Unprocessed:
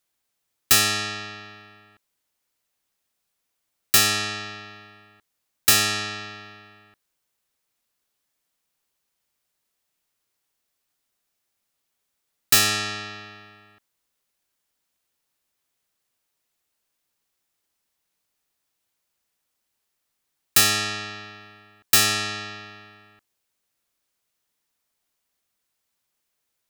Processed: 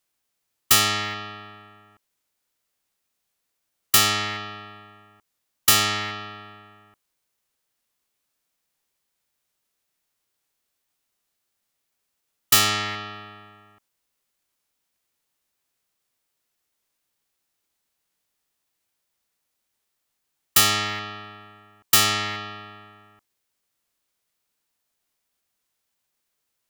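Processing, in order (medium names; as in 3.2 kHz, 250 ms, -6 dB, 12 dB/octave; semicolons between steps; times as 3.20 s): rattle on loud lows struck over -38 dBFS, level -22 dBFS; formant shift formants -5 st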